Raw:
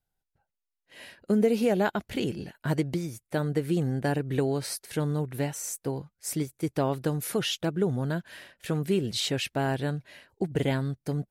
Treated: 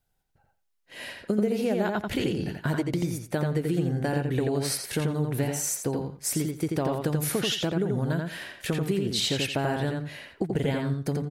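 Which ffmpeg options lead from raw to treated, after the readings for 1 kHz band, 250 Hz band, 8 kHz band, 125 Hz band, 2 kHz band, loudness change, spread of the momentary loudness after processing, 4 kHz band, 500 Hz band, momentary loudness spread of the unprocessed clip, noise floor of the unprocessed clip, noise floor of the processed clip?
+0.5 dB, +1.0 dB, +5.0 dB, +1.5 dB, +2.0 dB, +1.0 dB, 5 LU, +3.0 dB, 0.0 dB, 9 LU, -85 dBFS, -74 dBFS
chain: -filter_complex "[0:a]acompressor=threshold=-31dB:ratio=6,asplit=2[a][b];[b]adelay=86,lowpass=f=4.8k:p=1,volume=-3dB,asplit=2[c][d];[d]adelay=86,lowpass=f=4.8k:p=1,volume=0.19,asplit=2[e][f];[f]adelay=86,lowpass=f=4.8k:p=1,volume=0.19[g];[c][e][g]amix=inputs=3:normalize=0[h];[a][h]amix=inputs=2:normalize=0,volume=6.5dB"

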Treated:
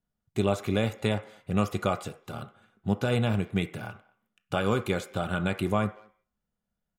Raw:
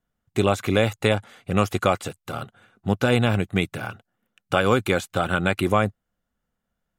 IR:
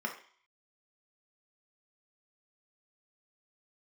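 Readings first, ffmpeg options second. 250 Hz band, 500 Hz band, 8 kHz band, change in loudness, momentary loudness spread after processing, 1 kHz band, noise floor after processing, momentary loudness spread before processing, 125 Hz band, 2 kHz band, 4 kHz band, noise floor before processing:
-4.5 dB, -7.0 dB, -8.0 dB, -6.0 dB, 13 LU, -8.0 dB, -85 dBFS, 14 LU, -4.5 dB, -9.0 dB, -7.5 dB, -81 dBFS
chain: -filter_complex "[0:a]asplit=2[a][b];[b]adelay=220,highpass=300,lowpass=3.4k,asoftclip=type=hard:threshold=-15dB,volume=-26dB[c];[a][c]amix=inputs=2:normalize=0,asplit=2[d][e];[1:a]atrim=start_sample=2205[f];[e][f]afir=irnorm=-1:irlink=0,volume=-11dB[g];[d][g]amix=inputs=2:normalize=0,volume=-6.5dB"

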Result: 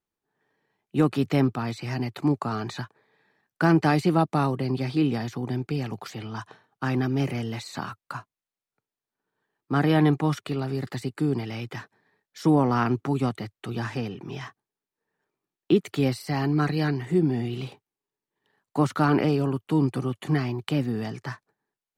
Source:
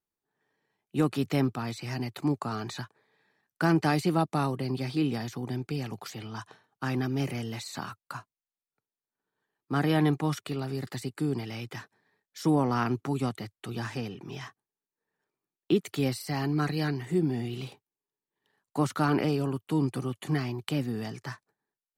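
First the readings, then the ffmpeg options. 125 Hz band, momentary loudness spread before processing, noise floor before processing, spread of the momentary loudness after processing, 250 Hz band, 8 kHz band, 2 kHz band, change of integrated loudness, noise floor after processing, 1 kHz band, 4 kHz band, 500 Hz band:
+4.5 dB, 15 LU, under -85 dBFS, 15 LU, +4.5 dB, -1.5 dB, +3.5 dB, +4.5 dB, under -85 dBFS, +4.0 dB, +1.5 dB, +4.5 dB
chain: -af "highshelf=f=4.9k:g=-8.5,volume=4.5dB"

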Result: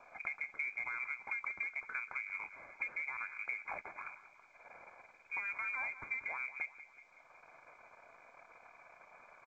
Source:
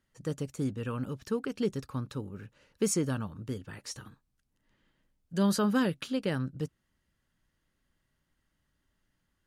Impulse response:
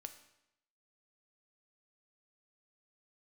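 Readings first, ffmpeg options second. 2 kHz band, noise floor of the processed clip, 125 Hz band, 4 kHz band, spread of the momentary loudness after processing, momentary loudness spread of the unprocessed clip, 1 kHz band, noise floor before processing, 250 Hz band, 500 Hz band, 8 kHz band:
+7.0 dB, -64 dBFS, under -35 dB, under -25 dB, 21 LU, 14 LU, -5.0 dB, -79 dBFS, -38.0 dB, -24.0 dB, under -30 dB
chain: -filter_complex "[0:a]aeval=exprs='if(lt(val(0),0),0.251*val(0),val(0))':c=same,highpass=310,adynamicequalizer=threshold=0.00398:dfrequency=520:dqfactor=1:tfrequency=520:tqfactor=1:attack=5:release=100:ratio=0.375:range=2:mode=boostabove:tftype=bell,asplit=2[a][b];[b]acompressor=mode=upward:threshold=-35dB:ratio=2.5,volume=-2.5dB[c];[a][c]amix=inputs=2:normalize=0,alimiter=limit=-24dB:level=0:latency=1:release=12,acompressor=threshold=-38dB:ratio=10,aecho=1:1:186|372|558|744|930:0.178|0.0978|0.0538|0.0296|0.0163,lowpass=f=2.2k:t=q:w=0.5098,lowpass=f=2.2k:t=q:w=0.6013,lowpass=f=2.2k:t=q:w=0.9,lowpass=f=2.2k:t=q:w=2.563,afreqshift=-2600,asuperstop=centerf=1900:order=4:qfactor=5.7,volume=3dB" -ar 16000 -c:a pcm_mulaw

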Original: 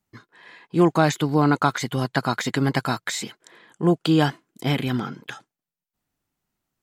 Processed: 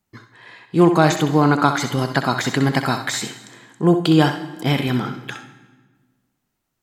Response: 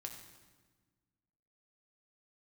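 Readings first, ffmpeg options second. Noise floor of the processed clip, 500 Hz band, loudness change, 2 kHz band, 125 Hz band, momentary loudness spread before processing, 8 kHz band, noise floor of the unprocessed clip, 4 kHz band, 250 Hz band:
-76 dBFS, +4.5 dB, +4.0 dB, +4.0 dB, +4.0 dB, 11 LU, +4.0 dB, under -85 dBFS, +4.0 dB, +4.0 dB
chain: -filter_complex "[0:a]asplit=2[a][b];[1:a]atrim=start_sample=2205,lowshelf=f=240:g=-7.5,adelay=64[c];[b][c]afir=irnorm=-1:irlink=0,volume=-3.5dB[d];[a][d]amix=inputs=2:normalize=0,volume=3.5dB"

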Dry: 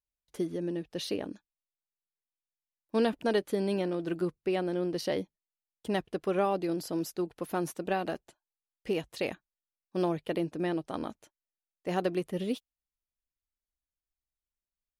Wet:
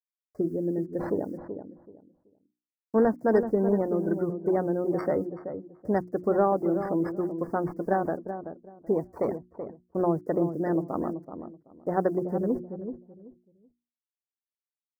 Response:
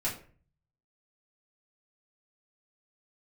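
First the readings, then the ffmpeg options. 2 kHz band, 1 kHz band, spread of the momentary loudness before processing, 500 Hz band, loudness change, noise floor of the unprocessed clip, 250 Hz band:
-1.0 dB, +5.0 dB, 9 LU, +5.5 dB, +4.5 dB, under -85 dBFS, +5.0 dB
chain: -filter_complex "[0:a]acrossover=split=810|2000[a][b][c];[c]acrusher=samples=13:mix=1:aa=0.000001[d];[a][b][d]amix=inputs=3:normalize=0,afftdn=nr=22:nf=-42,agate=range=-33dB:threshold=-53dB:ratio=3:detection=peak,highshelf=f=2.1k:g=-5.5,acrusher=bits=11:mix=0:aa=0.000001,asuperstop=centerf=3100:order=8:qfactor=1.2,bandreject=f=60:t=h:w=6,bandreject=f=120:t=h:w=6,bandreject=f=180:t=h:w=6,bandreject=f=240:t=h:w=6,bandreject=f=300:t=h:w=6,bandreject=f=360:t=h:w=6,asplit=2[e][f];[f]adelay=380,lowpass=f=850:p=1,volume=-8dB,asplit=2[g][h];[h]adelay=380,lowpass=f=850:p=1,volume=0.24,asplit=2[i][j];[j]adelay=380,lowpass=f=850:p=1,volume=0.24[k];[g][i][k]amix=inputs=3:normalize=0[l];[e][l]amix=inputs=2:normalize=0,adynamicequalizer=threshold=0.00112:dfrequency=7500:dqfactor=0.7:tfrequency=7500:tqfactor=0.7:attack=5:release=100:ratio=0.375:range=2:mode=boostabove:tftype=highshelf,volume=5.5dB"

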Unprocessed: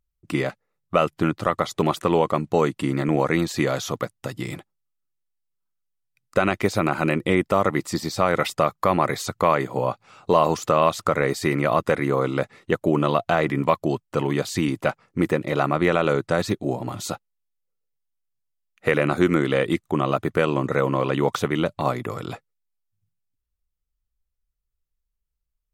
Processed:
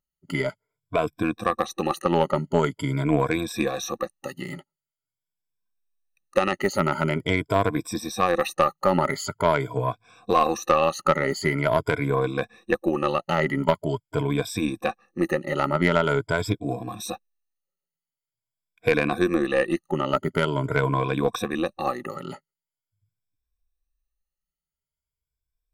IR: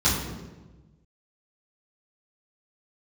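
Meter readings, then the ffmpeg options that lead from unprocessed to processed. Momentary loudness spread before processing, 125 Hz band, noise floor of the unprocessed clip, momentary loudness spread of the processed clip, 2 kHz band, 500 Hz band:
9 LU, -1.5 dB, -78 dBFS, 9 LU, -1.0 dB, -2.0 dB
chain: -af "afftfilt=real='re*pow(10,23/40*sin(2*PI*(1.7*log(max(b,1)*sr/1024/100)/log(2)-(0.45)*(pts-256)/sr)))':imag='im*pow(10,23/40*sin(2*PI*(1.7*log(max(b,1)*sr/1024/100)/log(2)-(0.45)*(pts-256)/sr)))':win_size=1024:overlap=0.75,aeval=exprs='1.06*(cos(1*acos(clip(val(0)/1.06,-1,1)))-cos(1*PI/2))+0.075*(cos(2*acos(clip(val(0)/1.06,-1,1)))-cos(2*PI/2))+0.188*(cos(3*acos(clip(val(0)/1.06,-1,1)))-cos(3*PI/2))+0.0335*(cos(5*acos(clip(val(0)/1.06,-1,1)))-cos(5*PI/2))':c=same,volume=-3.5dB"

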